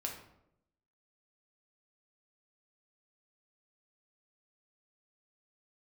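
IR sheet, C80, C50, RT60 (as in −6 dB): 9.5 dB, 6.0 dB, 0.80 s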